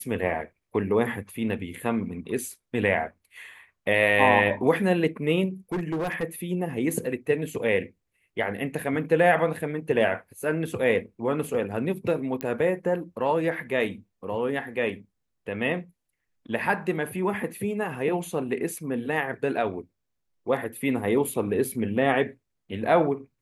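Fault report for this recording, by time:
5.72–6.24 clipped -24.5 dBFS
12.41 pop -15 dBFS

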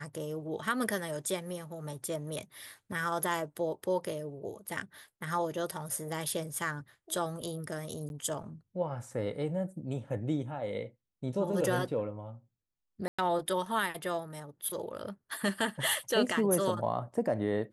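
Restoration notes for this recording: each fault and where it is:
8.09–8.1 gap 11 ms
13.08–13.19 gap 0.105 s

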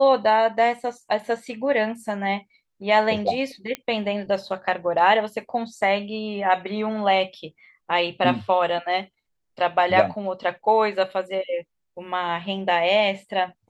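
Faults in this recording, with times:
3.75 pop -13 dBFS

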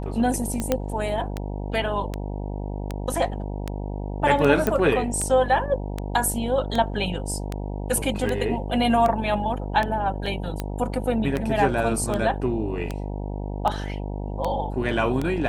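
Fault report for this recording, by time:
buzz 50 Hz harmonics 19 -30 dBFS
tick 78 rpm -13 dBFS
0.72 pop -7 dBFS
4.67 pop -8 dBFS
10.26 gap 2.7 ms

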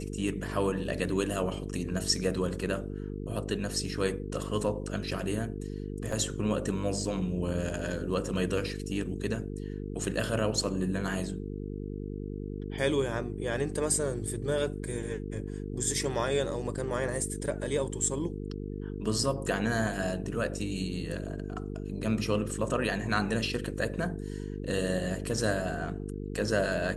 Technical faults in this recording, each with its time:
buzz 50 Hz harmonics 9 -37 dBFS
6.12 gap 4.3 ms

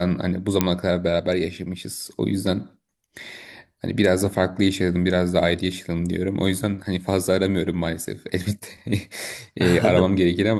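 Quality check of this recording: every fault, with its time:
0.61 pop -3 dBFS

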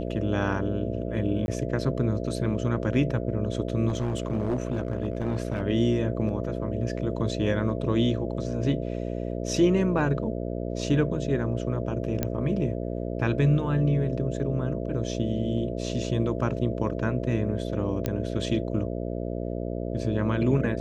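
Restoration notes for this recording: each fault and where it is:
buzz 60 Hz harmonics 11 -31 dBFS
1.46–1.48 gap 21 ms
3.88–5.62 clipped -21.5 dBFS
12.23 pop -12 dBFS
18.06 pop -13 dBFS

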